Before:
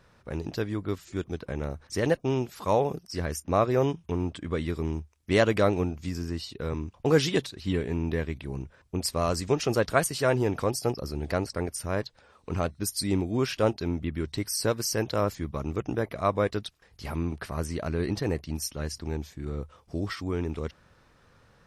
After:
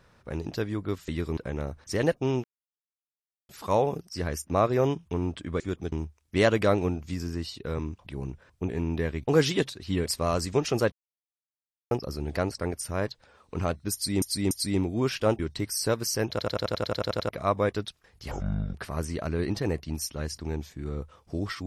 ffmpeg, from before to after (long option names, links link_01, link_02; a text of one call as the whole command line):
ffmpeg -i in.wav -filter_complex "[0:a]asplit=28[link_01][link_02][link_03][link_04][link_05][link_06][link_07][link_08][link_09][link_10][link_11][link_12][link_13][link_14][link_15][link_16][link_17][link_18][link_19][link_20][link_21][link_22][link_23][link_24][link_25][link_26][link_27][link_28];[link_01]atrim=end=1.082[link_29];[link_02]atrim=start=4.578:end=4.872[link_30];[link_03]atrim=start=1.398:end=2.47,asetpts=PTS-STARTPTS,afade=type=out:start_time=1.068:duration=0.004:curve=hsin,apad=pad_dur=1.05[link_31];[link_04]atrim=start=2.47:end=4.582,asetpts=PTS-STARTPTS,afade=type=in:duration=0.004:curve=hsin[link_32];[link_05]atrim=start=1.078:end=1.402[link_33];[link_06]atrim=start=4.868:end=7.012[link_34];[link_07]atrim=start=8.378:end=9.012[link_35];[link_08]atrim=start=7.828:end=8.382[link_36];[link_09]atrim=start=7.008:end=7.832[link_37];[link_10]atrim=start=9.008:end=9.87,asetpts=PTS-STARTPTS,afade=type=out:start_time=0.858:duration=0.004:curve=hsin[link_38];[link_11]atrim=start=9.87:end=10.86,asetpts=PTS-STARTPTS,volume=0[link_39];[link_12]atrim=start=10.86:end=13.172,asetpts=PTS-STARTPTS,afade=type=in:duration=0.004:curve=hsin[link_40];[link_13]atrim=start=12.878:end=13.172[link_41];[link_14]atrim=start=12.878:end=13.762[link_42];[link_15]atrim=start=14.168:end=15.172[link_43];[link_16]atrim=start=15.078:end=15.172[link_44];[link_17]atrim=start=15.078:end=15.172[link_45];[link_18]atrim=start=15.078:end=15.172[link_46];[link_19]atrim=start=15.078:end=15.172[link_47];[link_20]atrim=start=15.078:end=15.172[link_48];[link_21]atrim=start=15.078:end=15.172[link_49];[link_22]atrim=start=15.078:end=15.172[link_50];[link_23]atrim=start=15.078:end=15.172[link_51];[link_24]atrim=start=15.078:end=15.172[link_52];[link_25]atrim=start=15.078:end=15.172[link_53];[link_26]atrim=start=16.068:end=17.094[link_54];[link_27]atrim=start=17.09:end=17.35,asetpts=PTS-STARTPTS,asetrate=26460,aresample=44100[link_55];[link_28]atrim=start=17.346[link_56];[link_29][link_30]acrossfade=duration=0.004:curve1=hsin:curve2=hsin[link_57];[link_31][link_32]concat=n=2:v=0:a=1[link_58];[link_57][link_58]acrossfade=duration=0.004:curve1=hsin:curve2=hsin[link_59];[link_59][link_33]acrossfade=duration=0.004:curve1=hsin:curve2=hsin[link_60];[link_60][link_34]acrossfade=duration=0.004:curve1=hsin:curve2=hsin[link_61];[link_61][link_35]acrossfade=duration=0.004:curve1=hsin:curve2=hsin[link_62];[link_62][link_36]acrossfade=duration=0.004:curve1=hsin:curve2=hsin[link_63];[link_63][link_37]acrossfade=duration=0.004:curve1=hsin:curve2=hsin[link_64];[link_38][link_39][link_40]concat=n=3:v=0:a=1[link_65];[link_64][link_65]acrossfade=duration=0.004:curve1=hsin:curve2=hsin[link_66];[link_66][link_41]acrossfade=duration=0.004:curve1=hsin:curve2=hsin[link_67];[link_67][link_42]acrossfade=duration=0.004:curve1=hsin:curve2=hsin[link_68];[link_68][link_43]acrossfade=duration=0.004:curve1=hsin:curve2=hsin[link_69];[link_69][link_44]acrossfade=duration=0.004:curve1=hsin:curve2=hsin[link_70];[link_70][link_45]acrossfade=duration=0.004:curve1=hsin:curve2=hsin[link_71];[link_71][link_46]acrossfade=duration=0.004:curve1=hsin:curve2=hsin[link_72];[link_72][link_47]acrossfade=duration=0.004:curve1=hsin:curve2=hsin[link_73];[link_73][link_48]acrossfade=duration=0.004:curve1=hsin:curve2=hsin[link_74];[link_74][link_49]acrossfade=duration=0.004:curve1=hsin:curve2=hsin[link_75];[link_75][link_50]acrossfade=duration=0.004:curve1=hsin:curve2=hsin[link_76];[link_76][link_51]acrossfade=duration=0.004:curve1=hsin:curve2=hsin[link_77];[link_77][link_52]acrossfade=duration=0.004:curve1=hsin:curve2=hsin[link_78];[link_78][link_53]acrossfade=duration=0.004:curve1=hsin:curve2=hsin[link_79];[link_79][link_54]acrossfade=duration=0.004:curve1=hsin:curve2=hsin[link_80];[link_80][link_55]acrossfade=duration=0.004:curve1=hsin:curve2=hsin[link_81];[link_81][link_56]acrossfade=duration=0.004:curve1=hsin:curve2=hsin" out.wav